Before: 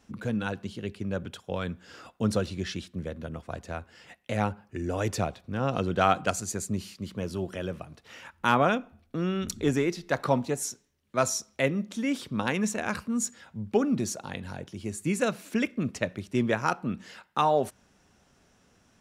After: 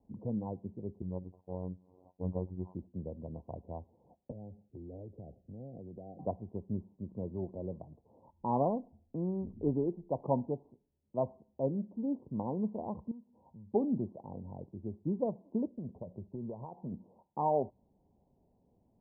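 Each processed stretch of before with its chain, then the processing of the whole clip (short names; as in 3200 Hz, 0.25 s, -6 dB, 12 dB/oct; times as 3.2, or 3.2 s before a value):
1.02–2.75 sample sorter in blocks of 16 samples + robotiser 91.5 Hz
4.31–6.19 Butterworth band-stop 1100 Hz, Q 0.8 + compressor 8:1, threshold -36 dBFS + three-band expander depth 40%
13.11–13.73 bell 940 Hz +7.5 dB 0.33 oct + compressor 4:1, threshold -44 dBFS
15.75–16.92 bell 290 Hz -12 dB 0.2 oct + compressor 10:1, threshold -30 dBFS
whole clip: Wiener smoothing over 25 samples; steep low-pass 1000 Hz 96 dB/oct; gain -5.5 dB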